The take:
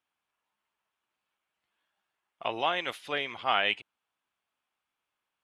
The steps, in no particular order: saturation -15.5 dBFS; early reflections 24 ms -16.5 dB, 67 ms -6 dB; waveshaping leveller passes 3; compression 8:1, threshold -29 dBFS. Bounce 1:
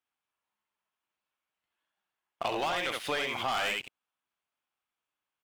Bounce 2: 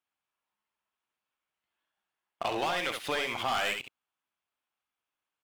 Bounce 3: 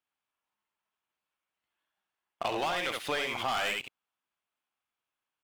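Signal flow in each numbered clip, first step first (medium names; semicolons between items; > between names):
saturation > early reflections > waveshaping leveller > compression; waveshaping leveller > saturation > compression > early reflections; waveshaping leveller > early reflections > saturation > compression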